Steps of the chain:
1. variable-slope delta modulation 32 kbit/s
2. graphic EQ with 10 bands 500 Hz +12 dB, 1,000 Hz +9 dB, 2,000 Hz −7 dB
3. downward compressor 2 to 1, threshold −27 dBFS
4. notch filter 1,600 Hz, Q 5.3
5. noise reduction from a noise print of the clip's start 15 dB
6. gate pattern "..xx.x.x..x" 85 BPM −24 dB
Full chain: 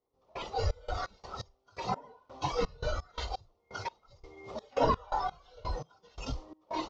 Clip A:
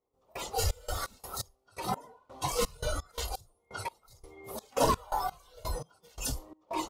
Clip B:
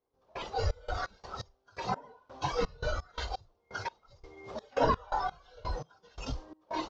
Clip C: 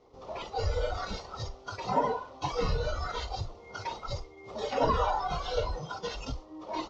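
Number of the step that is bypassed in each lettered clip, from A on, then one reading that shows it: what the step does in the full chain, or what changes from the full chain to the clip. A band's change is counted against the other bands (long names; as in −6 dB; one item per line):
1, 4 kHz band +4.0 dB
4, 2 kHz band +3.5 dB
6, change in crest factor −3.5 dB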